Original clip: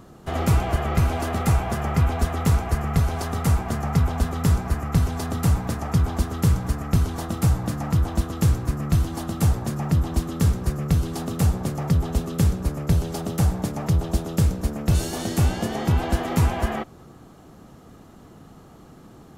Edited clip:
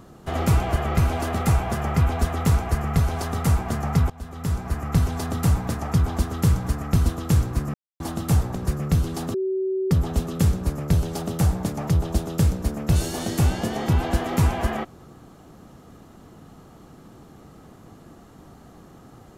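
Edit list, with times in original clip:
4.10–4.95 s: fade in, from -21.5 dB
7.06–8.18 s: delete
8.86–9.12 s: mute
9.67–10.54 s: delete
11.33–11.90 s: bleep 380 Hz -21.5 dBFS

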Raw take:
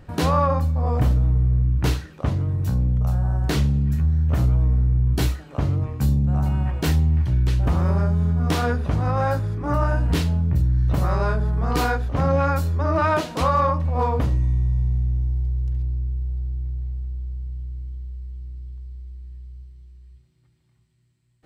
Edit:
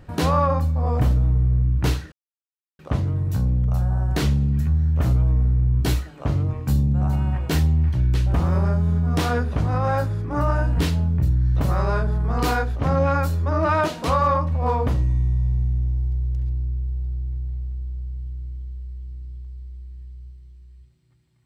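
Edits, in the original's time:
2.12 s: insert silence 0.67 s

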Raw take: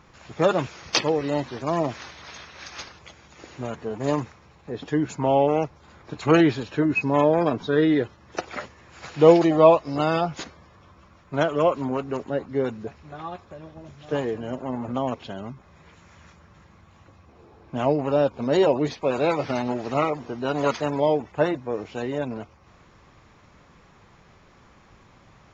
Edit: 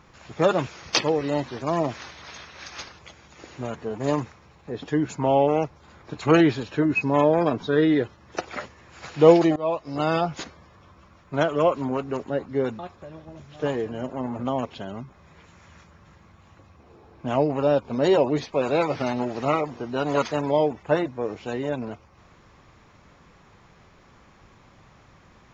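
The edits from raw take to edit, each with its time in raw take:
9.56–10.12 s: fade in, from -22 dB
12.79–13.28 s: delete

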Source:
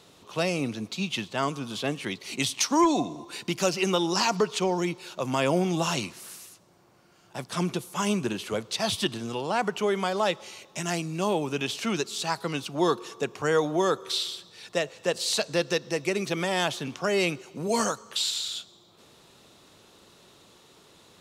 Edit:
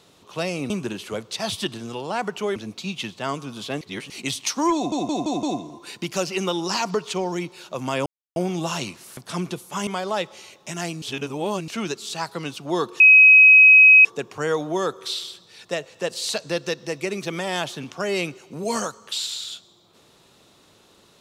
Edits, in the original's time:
1.95–2.24 s: reverse
2.89 s: stutter 0.17 s, 5 plays
5.52 s: insert silence 0.30 s
6.33–7.40 s: delete
8.10–9.96 s: move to 0.70 s
11.11–11.77 s: reverse
13.09 s: add tone 2.54 kHz -7 dBFS 1.05 s

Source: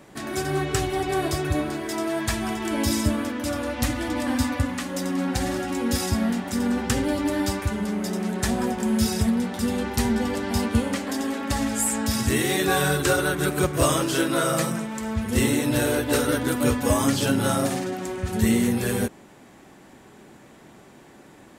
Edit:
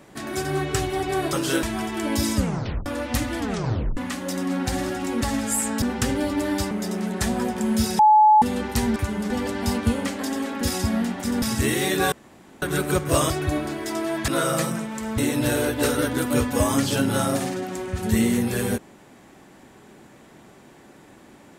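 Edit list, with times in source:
1.33–2.31 s: swap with 13.98–14.28 s
3.04 s: tape stop 0.50 s
4.07 s: tape stop 0.58 s
5.89–6.70 s: swap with 11.49–12.10 s
7.59–7.93 s: move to 10.18 s
9.21–9.64 s: bleep 856 Hz -10.5 dBFS
12.80–13.30 s: room tone
15.18–15.48 s: delete

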